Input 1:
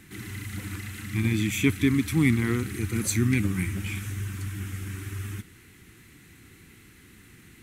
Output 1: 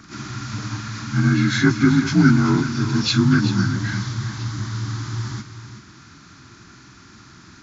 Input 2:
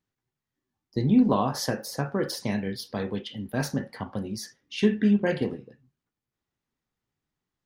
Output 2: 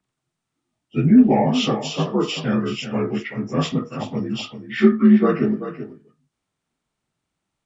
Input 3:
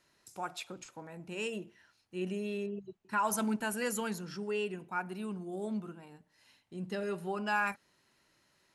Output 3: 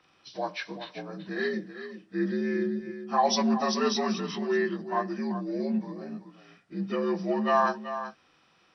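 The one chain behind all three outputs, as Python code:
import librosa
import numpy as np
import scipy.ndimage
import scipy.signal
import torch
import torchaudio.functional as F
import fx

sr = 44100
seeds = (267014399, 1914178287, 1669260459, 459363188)

y = fx.partial_stretch(x, sr, pct=82)
y = y + 10.0 ** (-11.0 / 20.0) * np.pad(y, (int(382 * sr / 1000.0), 0))[:len(y)]
y = F.gain(torch.from_numpy(y), 8.5).numpy()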